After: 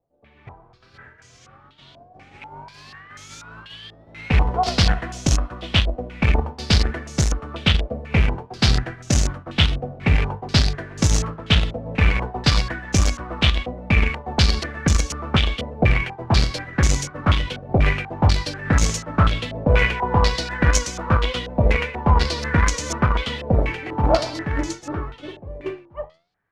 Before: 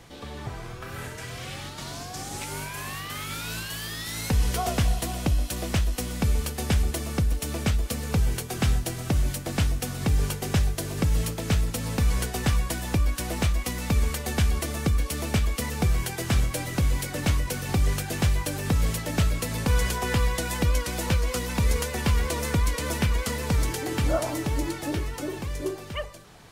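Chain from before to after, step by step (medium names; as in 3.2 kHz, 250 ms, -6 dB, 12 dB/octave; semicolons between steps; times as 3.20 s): expander -24 dBFS; flange 0.56 Hz, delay 6.7 ms, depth 8 ms, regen +82%; in parallel at -9.5 dB: bit crusher 4-bit; on the sum: step-sequenced low-pass 4.1 Hz 640–6400 Hz; trim +8 dB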